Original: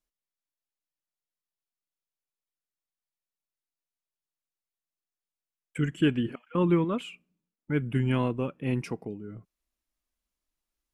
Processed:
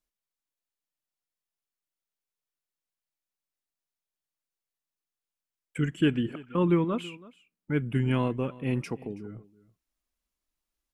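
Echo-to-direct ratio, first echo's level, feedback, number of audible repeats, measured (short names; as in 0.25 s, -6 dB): -20.5 dB, -20.5 dB, no steady repeat, 1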